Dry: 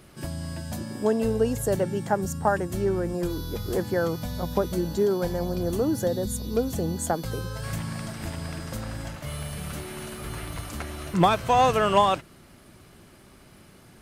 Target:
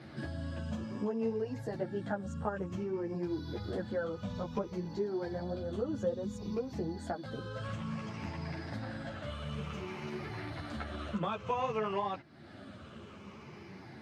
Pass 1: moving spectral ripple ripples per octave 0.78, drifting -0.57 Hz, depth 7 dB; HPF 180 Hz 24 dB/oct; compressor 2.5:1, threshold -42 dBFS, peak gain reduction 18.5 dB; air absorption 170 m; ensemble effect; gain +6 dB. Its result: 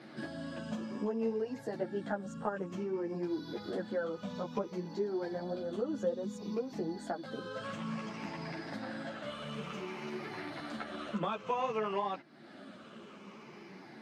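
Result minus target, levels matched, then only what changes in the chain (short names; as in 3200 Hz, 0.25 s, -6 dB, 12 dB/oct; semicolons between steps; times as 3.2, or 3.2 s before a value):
125 Hz band -6.0 dB
change: HPF 86 Hz 24 dB/oct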